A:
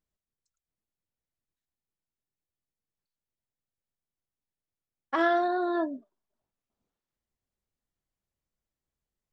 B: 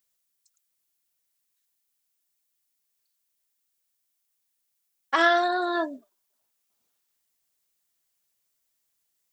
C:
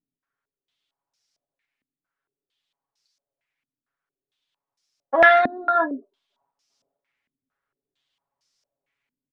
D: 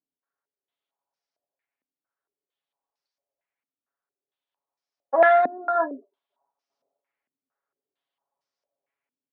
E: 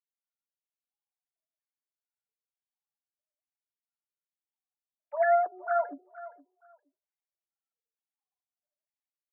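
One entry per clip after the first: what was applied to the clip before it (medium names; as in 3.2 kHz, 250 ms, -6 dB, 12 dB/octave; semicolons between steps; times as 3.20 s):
tilt EQ +4 dB/octave; trim +5 dB
comb 7.2 ms, depth 85%; in parallel at -7 dB: saturation -13.5 dBFS, distortion -14 dB; on the sum: step-sequenced low-pass 4.4 Hz 260–5300 Hz; trim -2.5 dB
band-pass filter 670 Hz, Q 1
formants replaced by sine waves; flange 0.51 Hz, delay 4.4 ms, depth 1.4 ms, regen -39%; feedback delay 469 ms, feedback 19%, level -17 dB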